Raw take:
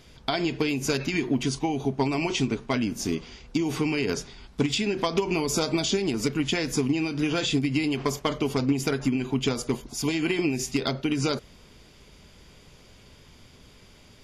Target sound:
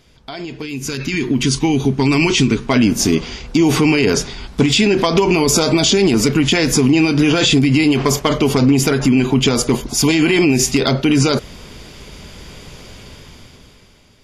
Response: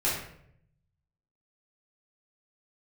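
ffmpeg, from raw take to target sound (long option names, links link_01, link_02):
-filter_complex "[0:a]asettb=1/sr,asplit=3[link_01][link_02][link_03];[link_01]atrim=end=0.624[link_04];[link_02]atrim=start=0.62:end=2.66,asetpts=PTS-STARTPTS,afade=type=in:duration=0.004:curve=qsin,afade=type=out:start_time=2.036:duration=0.004:curve=qsin,equalizer=frequency=670:width=1.5:gain=-12[link_05];[link_03]atrim=start=2.656[link_06];[link_04][link_05]acrossfade=duration=0.004:curve1=hsin:curve2=qsin[link_07];[link_07][link_06]acrossfade=duration=0.004:curve1=qsin:curve2=hsin,alimiter=limit=-20.5dB:level=0:latency=1:release=18,dynaudnorm=framelen=180:gausssize=13:maxgain=16dB"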